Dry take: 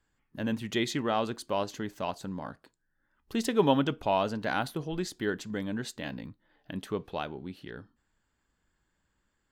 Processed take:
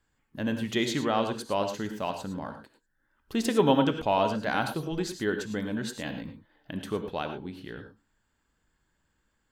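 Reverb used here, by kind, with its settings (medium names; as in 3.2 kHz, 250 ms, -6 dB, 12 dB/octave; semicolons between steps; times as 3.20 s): gated-style reverb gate 130 ms rising, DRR 7 dB; trim +1.5 dB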